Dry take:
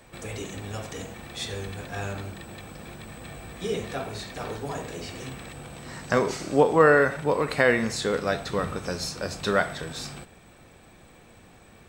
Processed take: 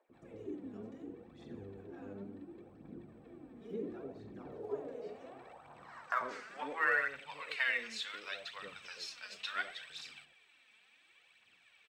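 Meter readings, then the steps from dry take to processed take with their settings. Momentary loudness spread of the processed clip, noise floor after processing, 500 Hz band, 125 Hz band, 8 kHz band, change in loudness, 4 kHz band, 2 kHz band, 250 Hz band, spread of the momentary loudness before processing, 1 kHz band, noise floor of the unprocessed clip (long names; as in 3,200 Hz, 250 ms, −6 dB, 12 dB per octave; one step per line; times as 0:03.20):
20 LU, −68 dBFS, −20.5 dB, −23.5 dB, −19.5 dB, −13.5 dB, −9.5 dB, −8.5 dB, −16.5 dB, 20 LU, −13.5 dB, −53 dBFS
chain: band-pass filter sweep 310 Hz → 2,800 Hz, 0:04.24–0:07.26
phase shifter 0.7 Hz, delay 4.9 ms, feedback 56%
multiband delay without the direct sound highs, lows 90 ms, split 620 Hz
level −4 dB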